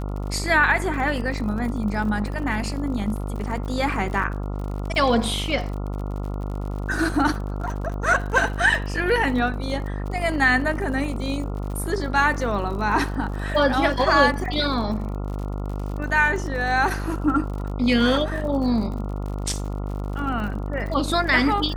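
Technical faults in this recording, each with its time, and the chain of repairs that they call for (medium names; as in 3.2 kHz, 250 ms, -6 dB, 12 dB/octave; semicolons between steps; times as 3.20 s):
buzz 50 Hz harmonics 28 -28 dBFS
crackle 57 per s -32 dBFS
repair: de-click; de-hum 50 Hz, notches 28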